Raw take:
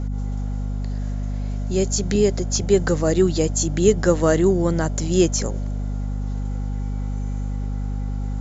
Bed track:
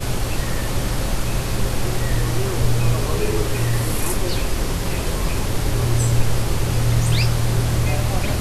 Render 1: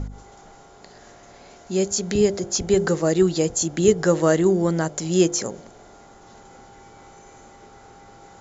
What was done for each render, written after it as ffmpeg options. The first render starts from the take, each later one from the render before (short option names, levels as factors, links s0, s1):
-af "bandreject=f=50:t=h:w=4,bandreject=f=100:t=h:w=4,bandreject=f=150:t=h:w=4,bandreject=f=200:t=h:w=4,bandreject=f=250:t=h:w=4,bandreject=f=300:t=h:w=4,bandreject=f=350:t=h:w=4,bandreject=f=400:t=h:w=4,bandreject=f=450:t=h:w=4,bandreject=f=500:t=h:w=4,bandreject=f=550:t=h:w=4,bandreject=f=600:t=h:w=4"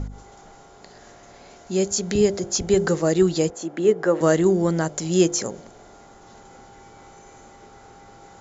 -filter_complex "[0:a]asettb=1/sr,asplit=3[s0][s1][s2];[s0]atrim=end=3.504[s3];[s1]atrim=start=3.5:end=4.21,asetpts=PTS-STARTPTS,afade=t=in:d=0.004:c=qsin,afade=t=out:st=0.706:d=0.004:c=qsin,acrossover=split=220 2500:gain=0.0794 1 0.178[s4][s5][s6];[s4][s5][s6]amix=inputs=3:normalize=0[s7];[s2]atrim=start=4.206[s8];[s3][s7]acrossfade=d=0.004:c1=hsin:c2=qsin[s9];[s9][s8]acrossfade=d=0.004:c1=qsin:c2=hsin"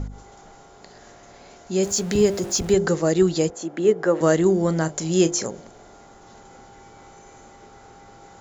-filter_complex "[0:a]asettb=1/sr,asplit=3[s0][s1][s2];[s0]atrim=end=1.834[s3];[s1]atrim=start=1.83:end=2.73,asetpts=PTS-STARTPTS,afade=t=in:d=0.004:c=qsin,afade=t=out:st=0.896:d=0.004:c=qsin,aeval=exprs='val(0)+0.5*0.0211*sgn(val(0))':c=same[s4];[s2]atrim=start=2.726[s5];[s3][s4]acrossfade=d=0.004:c1=hsin:c2=qsin[s6];[s6][s5]acrossfade=d=0.004:c1=qsin:c2=hsin,asettb=1/sr,asplit=3[s7][s8][s9];[s7]atrim=end=4.524[s10];[s8]atrim=start=4.52:end=5.48,asetpts=PTS-STARTPTS,afade=t=in:d=0.004:c=qsin,afade=t=out:st=0.956:d=0.004:c=qsin,asplit=2[s11][s12];[s12]adelay=31,volume=0.211[s13];[s11][s13]amix=inputs=2:normalize=0,atrim=end_sample=42336[s14];[s9]atrim=start=5.476[s15];[s10][s14]acrossfade=d=0.004:c1=hsin:c2=qsin[s16];[s16][s15]acrossfade=d=0.004:c1=qsin:c2=hsin"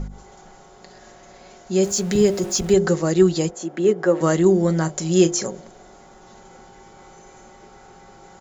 -af "aecho=1:1:5.4:0.45"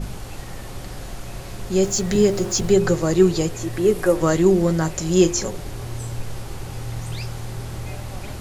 -filter_complex "[1:a]volume=0.251[s0];[0:a][s0]amix=inputs=2:normalize=0"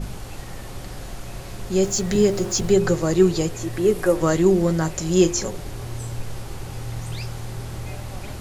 -af "volume=0.891"